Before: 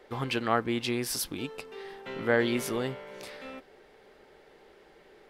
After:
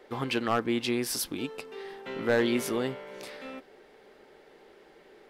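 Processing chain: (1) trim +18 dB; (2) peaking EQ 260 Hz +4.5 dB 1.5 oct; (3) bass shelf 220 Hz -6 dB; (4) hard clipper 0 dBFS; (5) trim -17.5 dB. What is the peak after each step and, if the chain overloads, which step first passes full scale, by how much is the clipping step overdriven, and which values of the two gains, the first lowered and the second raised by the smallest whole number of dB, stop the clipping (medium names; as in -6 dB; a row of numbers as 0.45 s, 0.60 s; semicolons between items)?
+7.5 dBFS, +8.5 dBFS, +8.5 dBFS, 0.0 dBFS, -17.5 dBFS; step 1, 8.5 dB; step 1 +9 dB, step 5 -8.5 dB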